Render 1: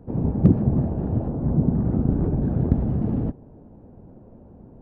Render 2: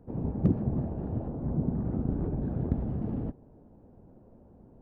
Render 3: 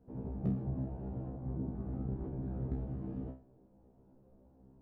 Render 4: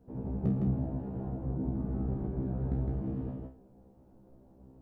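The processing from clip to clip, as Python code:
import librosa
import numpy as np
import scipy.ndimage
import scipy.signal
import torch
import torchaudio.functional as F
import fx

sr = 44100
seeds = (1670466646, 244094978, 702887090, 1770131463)

y1 = fx.peak_eq(x, sr, hz=130.0, db=-2.5, octaves=2.3)
y1 = y1 * librosa.db_to_amplitude(-7.0)
y2 = fx.comb_fb(y1, sr, f0_hz=65.0, decay_s=0.35, harmonics='all', damping=0.0, mix_pct=100)
y3 = y2 + 10.0 ** (-3.0 / 20.0) * np.pad(y2, (int(160 * sr / 1000.0), 0))[:len(y2)]
y3 = y3 * librosa.db_to_amplitude(3.5)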